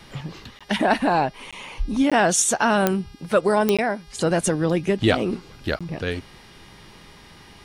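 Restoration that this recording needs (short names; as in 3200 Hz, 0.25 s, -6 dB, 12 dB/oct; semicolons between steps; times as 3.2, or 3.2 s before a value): de-click; de-hum 407.2 Hz, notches 14; interpolate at 0.59/1.51/2.1/3.77/5.79, 16 ms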